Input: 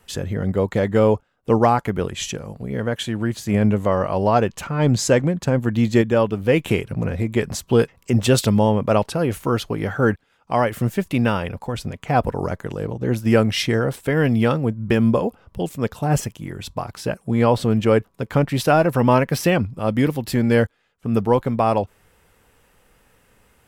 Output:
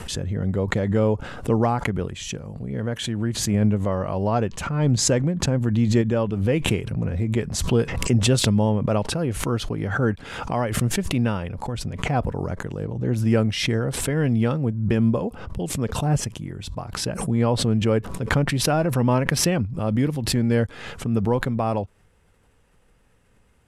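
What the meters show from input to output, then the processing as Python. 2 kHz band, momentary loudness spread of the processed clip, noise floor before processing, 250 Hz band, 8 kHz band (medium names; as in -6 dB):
-3.0 dB, 9 LU, -61 dBFS, -2.5 dB, +3.5 dB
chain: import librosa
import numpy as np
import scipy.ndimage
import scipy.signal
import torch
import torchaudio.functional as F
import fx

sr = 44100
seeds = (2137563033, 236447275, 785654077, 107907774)

y = scipy.signal.sosfilt(scipy.signal.butter(4, 11000.0, 'lowpass', fs=sr, output='sos'), x)
y = fx.low_shelf(y, sr, hz=280.0, db=8.0)
y = fx.pre_swell(y, sr, db_per_s=53.0)
y = y * 10.0 ** (-8.0 / 20.0)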